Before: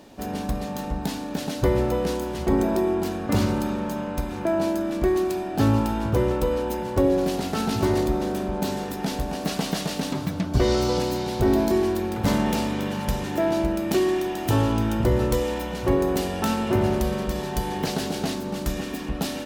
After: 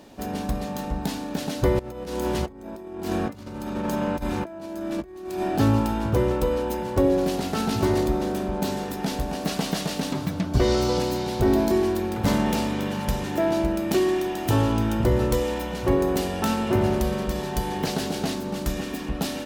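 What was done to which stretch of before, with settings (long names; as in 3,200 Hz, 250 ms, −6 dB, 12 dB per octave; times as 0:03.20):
0:01.79–0:05.58: compressor whose output falls as the input rises −29 dBFS, ratio −0.5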